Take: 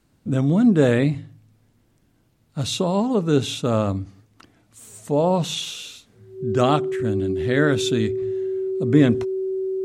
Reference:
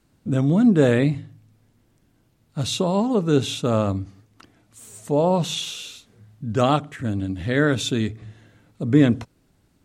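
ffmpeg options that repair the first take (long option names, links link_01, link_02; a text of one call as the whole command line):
ffmpeg -i in.wav -af "bandreject=frequency=380:width=30" out.wav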